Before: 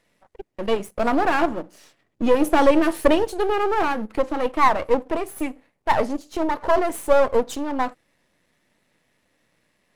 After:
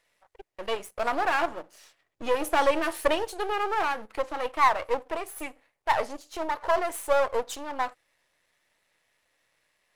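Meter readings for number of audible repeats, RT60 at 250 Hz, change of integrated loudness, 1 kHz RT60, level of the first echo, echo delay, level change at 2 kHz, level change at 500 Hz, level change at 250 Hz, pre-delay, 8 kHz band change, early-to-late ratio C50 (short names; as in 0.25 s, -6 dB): none, none, -6.0 dB, none, none, none, -2.5 dB, -7.5 dB, -14.5 dB, none, -2.0 dB, none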